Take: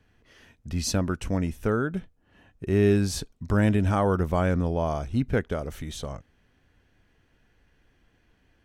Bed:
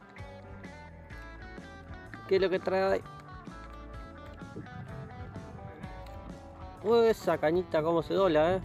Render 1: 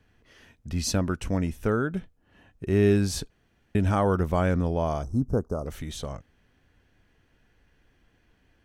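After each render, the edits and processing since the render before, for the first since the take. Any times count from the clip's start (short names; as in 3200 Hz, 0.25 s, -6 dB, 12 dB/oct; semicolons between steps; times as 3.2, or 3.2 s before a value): 3.3–3.75 room tone; 5.03–5.66 elliptic band-stop 1200–5400 Hz, stop band 50 dB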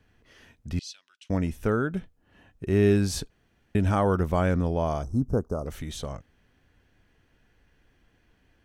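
0.79–1.3 ladder band-pass 3900 Hz, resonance 50%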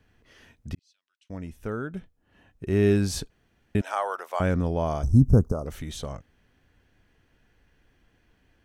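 0.75–2.9 fade in; 3.81–4.4 HPF 620 Hz 24 dB/oct; 5.03–5.52 tone controls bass +12 dB, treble +8 dB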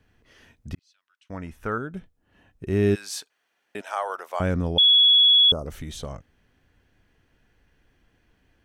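0.74–1.78 bell 1300 Hz +11 dB 1.7 oct; 2.94–4.08 HPF 1400 Hz -> 370 Hz; 4.78–5.52 bleep 3370 Hz -12.5 dBFS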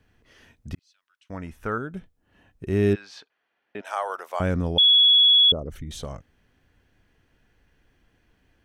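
2.93–3.85 air absorption 240 m; 5.08–5.91 formant sharpening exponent 1.5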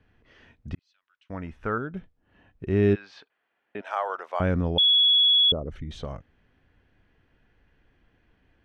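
LPF 3300 Hz 12 dB/oct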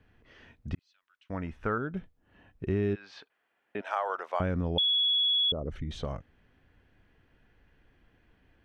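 compressor 6:1, threshold -25 dBFS, peak gain reduction 9 dB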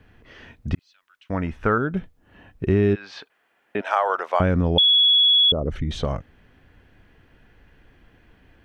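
gain +10 dB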